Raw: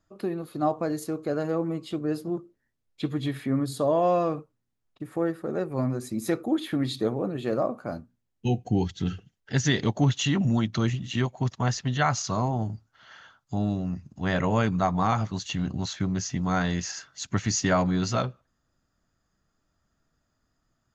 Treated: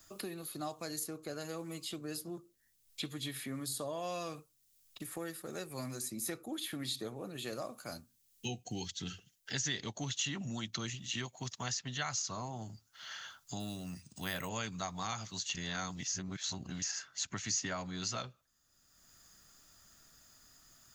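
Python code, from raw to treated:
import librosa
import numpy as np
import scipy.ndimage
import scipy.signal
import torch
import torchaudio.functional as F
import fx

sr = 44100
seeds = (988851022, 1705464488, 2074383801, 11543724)

y = fx.resample_linear(x, sr, factor=3, at=(13.6, 14.49))
y = fx.edit(y, sr, fx.reverse_span(start_s=15.55, length_s=1.27), tone=tone)
y = F.preemphasis(torch.from_numpy(y), 0.9).numpy()
y = fx.band_squash(y, sr, depth_pct=70)
y = y * librosa.db_to_amplitude(2.5)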